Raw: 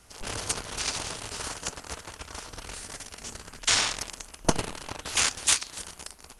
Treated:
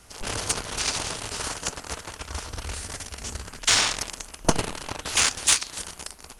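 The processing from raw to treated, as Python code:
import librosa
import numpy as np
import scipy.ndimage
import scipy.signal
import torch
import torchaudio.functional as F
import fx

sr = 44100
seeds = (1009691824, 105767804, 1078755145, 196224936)

p1 = fx.peak_eq(x, sr, hz=70.0, db=11.0, octaves=0.96, at=(2.28, 3.47))
p2 = 10.0 ** (-17.5 / 20.0) * np.tanh(p1 / 10.0 ** (-17.5 / 20.0))
y = p1 + (p2 * librosa.db_to_amplitude(-4.0))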